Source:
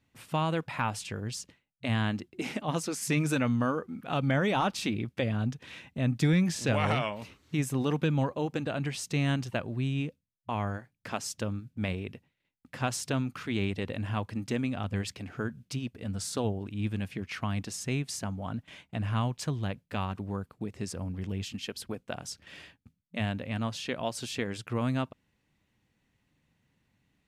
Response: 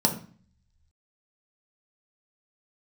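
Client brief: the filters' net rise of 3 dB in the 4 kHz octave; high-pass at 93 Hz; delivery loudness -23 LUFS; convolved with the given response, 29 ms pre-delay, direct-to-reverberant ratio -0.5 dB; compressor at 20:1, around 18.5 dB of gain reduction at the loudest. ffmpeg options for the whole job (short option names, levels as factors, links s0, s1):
-filter_complex "[0:a]highpass=93,equalizer=f=4000:t=o:g=4,acompressor=threshold=0.0112:ratio=20,asplit=2[s0][s1];[1:a]atrim=start_sample=2205,adelay=29[s2];[s1][s2]afir=irnorm=-1:irlink=0,volume=0.282[s3];[s0][s3]amix=inputs=2:normalize=0,volume=5.01"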